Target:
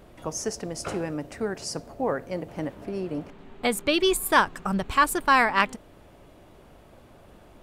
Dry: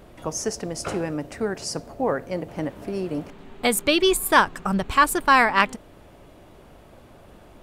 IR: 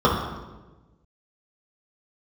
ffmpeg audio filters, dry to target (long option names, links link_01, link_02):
-filter_complex "[0:a]asettb=1/sr,asplit=3[link_01][link_02][link_03];[link_01]atrim=end=2.754[link_04];[link_02]atrim=start=2.75:end=3.94,asetpts=PTS-STARTPTS,afade=type=in:duration=0.004:curve=qsin,afade=type=out:start_time=1.186:duration=0.004:curve=qsin,highshelf=frequency=5400:gain=-6.5[link_05];[link_03]atrim=start=3.936[link_06];[link_04][link_05]acrossfade=duration=0.004:curve1=hsin:curve2=qsin[link_07];[link_07][link_06]acrossfade=duration=0.004:curve1=qsin:curve2=hsin,volume=-3dB"